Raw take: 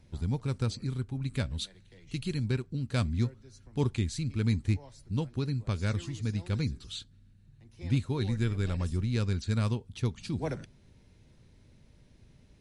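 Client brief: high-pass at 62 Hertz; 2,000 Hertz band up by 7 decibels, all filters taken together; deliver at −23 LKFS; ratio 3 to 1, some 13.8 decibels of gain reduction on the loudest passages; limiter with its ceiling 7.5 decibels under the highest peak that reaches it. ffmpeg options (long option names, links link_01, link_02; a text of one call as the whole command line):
ffmpeg -i in.wav -af "highpass=62,equalizer=frequency=2000:width_type=o:gain=9,acompressor=threshold=-42dB:ratio=3,volume=22.5dB,alimiter=limit=-12.5dB:level=0:latency=1" out.wav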